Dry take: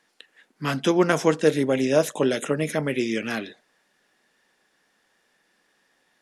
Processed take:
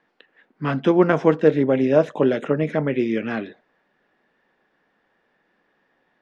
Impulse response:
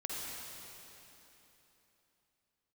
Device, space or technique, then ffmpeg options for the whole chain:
phone in a pocket: -af "lowpass=3.2k,highshelf=f=2.3k:g=-11,volume=4dB"

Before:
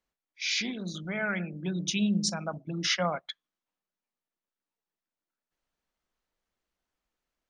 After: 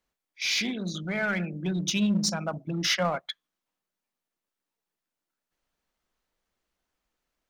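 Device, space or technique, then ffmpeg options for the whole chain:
parallel distortion: -filter_complex "[0:a]asplit=2[a][b];[b]asoftclip=type=hard:threshold=-30.5dB,volume=-5dB[c];[a][c]amix=inputs=2:normalize=0"

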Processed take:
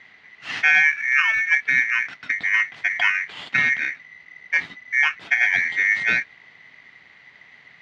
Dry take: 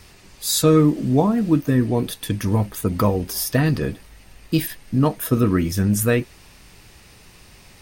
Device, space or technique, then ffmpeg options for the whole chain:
ring modulator pedal into a guitar cabinet: -af "aeval=exprs='val(0)*sgn(sin(2*PI*2000*n/s))':c=same,highpass=92,equalizer=f=150:t=q:w=4:g=4,equalizer=f=340:t=q:w=4:g=-4,equalizer=f=530:t=q:w=4:g=-6,equalizer=f=2k:t=q:w=4:g=4,lowpass=f=3.6k:w=0.5412,lowpass=f=3.6k:w=1.3066,volume=-3dB"

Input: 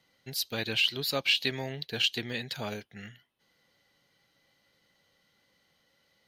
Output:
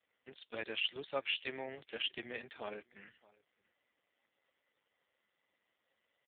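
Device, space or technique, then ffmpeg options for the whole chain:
satellite phone: -af "highpass=320,lowpass=3.1k,aecho=1:1:616:0.0631,volume=-4dB" -ar 8000 -c:a libopencore_amrnb -b:a 4750

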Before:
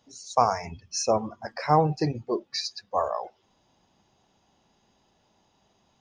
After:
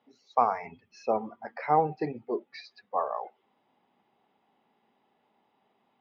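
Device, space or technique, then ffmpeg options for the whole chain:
kitchen radio: -filter_complex "[0:a]asettb=1/sr,asplit=3[a][b][c];[a]atrim=end=0.804[d];[b]atrim=start=0.8:end=2.62,asetpts=PTS-STARTPTS,afade=t=in:d=0.004:c=qsin,afade=t=out:st=1.816:d=0.004:c=qsin,bandreject=f=1.1k:w=10[e];[c]atrim=start=2.616[f];[d][e]acrossfade=d=0.004:c1=hsin:c2=qsin[g];[g][f]acrossfade=d=0.004:c1=qsin:c2=hsin,highpass=190,equalizer=f=240:t=q:w=4:g=6,equalizer=f=430:t=q:w=4:g=6,equalizer=f=810:t=q:w=4:g=6,equalizer=f=1.2k:t=q:w=4:g=5,equalizer=f=2.1k:t=q:w=4:g=7,lowpass=f=3.4k:w=0.5412,lowpass=f=3.4k:w=1.3066,volume=-7dB"

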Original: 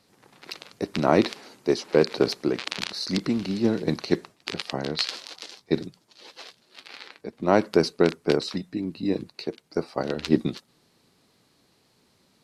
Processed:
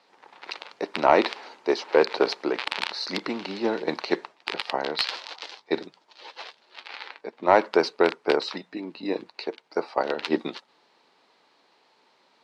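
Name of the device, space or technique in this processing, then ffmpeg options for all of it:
intercom: -af "highpass=500,lowpass=3.6k,equalizer=f=900:t=o:w=0.29:g=6.5,asoftclip=type=tanh:threshold=-9.5dB,volume=5dB"

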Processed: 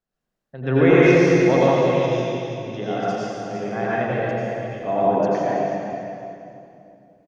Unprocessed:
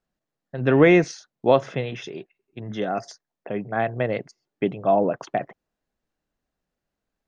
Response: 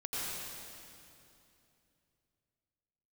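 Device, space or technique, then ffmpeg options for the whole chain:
cave: -filter_complex "[0:a]asettb=1/sr,asplit=3[a][b][c];[a]atrim=end=4.124[d];[b]atrim=start=4.12:end=4.74,asetpts=PTS-STARTPTS,afade=t=in:d=0.004:c=qsin,afade=t=out:st=0.616:d=0.004:c=qsin,aderivative[e];[c]atrim=start=4.736[f];[d][e]acrossfade=d=0.004:c1=hsin:c2=qsin[g];[g][f]acrossfade=d=0.004:c1=qsin:c2=hsin,aecho=1:1:333:0.299[h];[1:a]atrim=start_sample=2205[i];[h][i]afir=irnorm=-1:irlink=0,volume=-1dB"

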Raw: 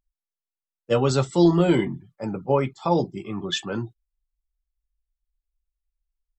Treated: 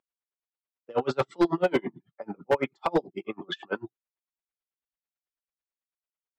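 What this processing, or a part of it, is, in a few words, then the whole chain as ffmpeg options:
helicopter radio: -af "highpass=340,lowpass=2.6k,aeval=exprs='val(0)*pow(10,-36*(0.5-0.5*cos(2*PI*9.1*n/s))/20)':c=same,asoftclip=type=hard:threshold=-23dB,volume=7dB"

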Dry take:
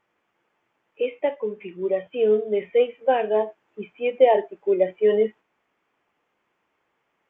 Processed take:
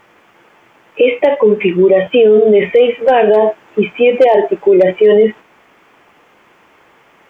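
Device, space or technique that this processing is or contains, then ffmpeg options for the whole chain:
loud club master: -af "acompressor=threshold=-20dB:ratio=2.5,asoftclip=type=hard:threshold=-14.5dB,alimiter=level_in=25.5dB:limit=-1dB:release=50:level=0:latency=1,volume=-1dB"

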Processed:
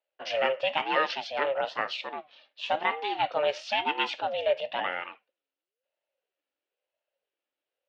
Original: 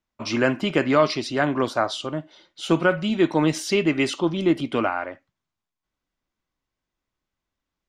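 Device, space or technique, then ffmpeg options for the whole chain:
voice changer toy: -af "aeval=exprs='val(0)*sin(2*PI*450*n/s+450*0.4/1*sin(2*PI*1*n/s))':c=same,highpass=520,equalizer=f=540:t=q:w=4:g=9,equalizer=f=1.1k:t=q:w=4:g=-4,equalizer=f=2.8k:t=q:w=4:g=8,lowpass=f=4.6k:w=0.5412,lowpass=f=4.6k:w=1.3066,volume=-3dB"

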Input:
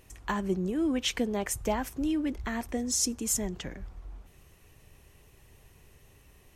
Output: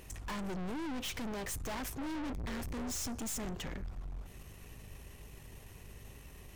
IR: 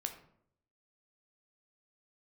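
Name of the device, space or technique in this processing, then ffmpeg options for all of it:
valve amplifier with mains hum: -filter_complex "[0:a]asettb=1/sr,asplit=3[a][b][c];[a]atrim=end=2.154[d];[b]atrim=start=2.15:end=3.08,asetpts=PTS-STARTPTS,afade=t=in:d=0.004:c=qsin,afade=t=out:st=0.926:d=0.004:c=qsin,equalizer=f=65:w=0.55:g=12.5[e];[c]atrim=start=3.076[f];[d][e]acrossfade=d=0.004:c1=hsin:c2=qsin[g];[g][f]acrossfade=d=0.004:c1=qsin:c2=hsin,aeval=exprs='(tanh(158*val(0)+0.4)-tanh(0.4))/158':c=same,aeval=exprs='val(0)+0.000891*(sin(2*PI*50*n/s)+sin(2*PI*2*50*n/s)/2+sin(2*PI*3*50*n/s)/3+sin(2*PI*4*50*n/s)/4+sin(2*PI*5*50*n/s)/5)':c=same,volume=6dB"

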